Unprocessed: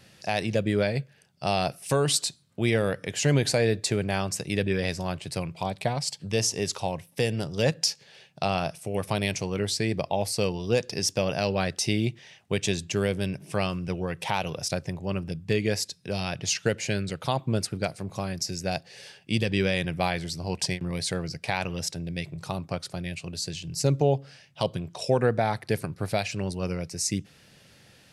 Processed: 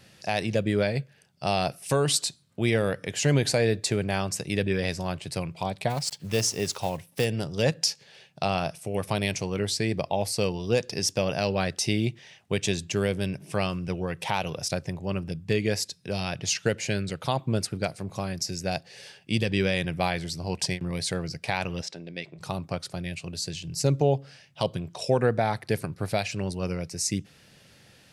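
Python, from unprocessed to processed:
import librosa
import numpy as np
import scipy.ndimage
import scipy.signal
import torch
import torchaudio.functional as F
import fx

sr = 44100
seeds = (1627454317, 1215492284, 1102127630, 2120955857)

y = fx.block_float(x, sr, bits=5, at=(5.89, 7.24), fade=0.02)
y = fx.bandpass_edges(y, sr, low_hz=270.0, high_hz=4600.0, at=(21.81, 22.39), fade=0.02)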